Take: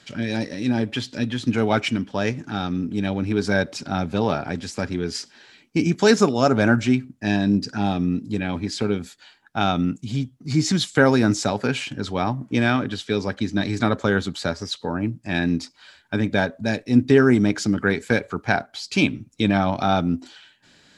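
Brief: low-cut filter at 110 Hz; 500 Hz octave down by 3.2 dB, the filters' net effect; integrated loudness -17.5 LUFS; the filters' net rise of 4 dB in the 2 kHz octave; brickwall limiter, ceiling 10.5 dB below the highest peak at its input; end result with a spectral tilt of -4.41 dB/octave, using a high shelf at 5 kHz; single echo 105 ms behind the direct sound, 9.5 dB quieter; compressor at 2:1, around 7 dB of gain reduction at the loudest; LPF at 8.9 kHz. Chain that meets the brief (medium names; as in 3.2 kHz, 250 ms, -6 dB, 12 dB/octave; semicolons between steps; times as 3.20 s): high-pass 110 Hz; low-pass 8.9 kHz; peaking EQ 500 Hz -4.5 dB; peaking EQ 2 kHz +5 dB; treble shelf 5 kHz +5.5 dB; compression 2:1, threshold -24 dBFS; peak limiter -17.5 dBFS; delay 105 ms -9.5 dB; trim +11 dB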